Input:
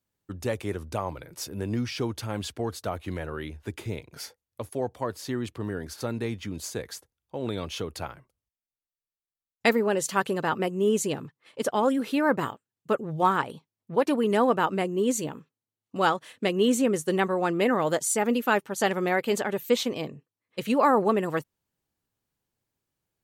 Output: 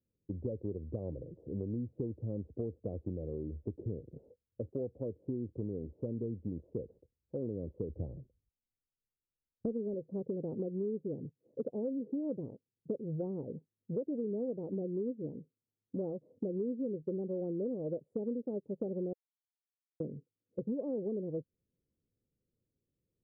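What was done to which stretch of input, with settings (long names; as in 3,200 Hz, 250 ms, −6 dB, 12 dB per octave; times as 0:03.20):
0:07.89–0:09.94: low-shelf EQ 190 Hz +9 dB
0:19.13–0:20.00: silence
whole clip: elliptic low-pass filter 520 Hz, stop band 70 dB; downward compressor 6 to 1, threshold −35 dBFS; level +1 dB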